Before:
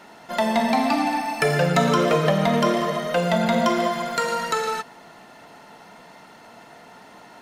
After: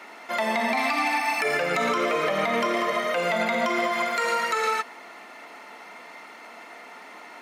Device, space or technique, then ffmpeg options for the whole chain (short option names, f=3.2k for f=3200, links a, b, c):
laptop speaker: -filter_complex "[0:a]asettb=1/sr,asplit=3[a][b][c];[a]atrim=end=0.774[d];[b]atrim=start=0.77:end=1.41,asetpts=PTS-STARTPTS,afade=t=in:d=0.004:c=qsin,afade=t=out:st=0.636:d=0.004:c=qsin,tiltshelf=f=710:g=-5[e];[c]atrim=start=1.406[f];[d][e]acrossfade=d=0.004:c1=hsin:c2=qsin[g];[g][f]acrossfade=d=0.004:c1=qsin:c2=hsin,highpass=f=250:w=0.5412,highpass=f=250:w=1.3066,equalizer=f=1.2k:t=o:w=0.23:g=8,equalizer=f=2.2k:t=o:w=0.41:g=11.5,alimiter=limit=-15dB:level=0:latency=1:release=120"